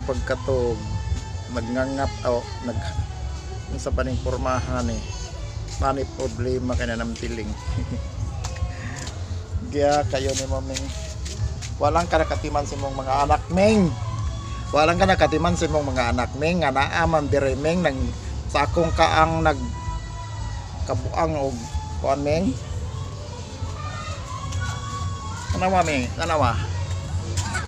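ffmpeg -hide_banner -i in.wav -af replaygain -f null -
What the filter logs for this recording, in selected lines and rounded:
track_gain = +3.6 dB
track_peak = 0.605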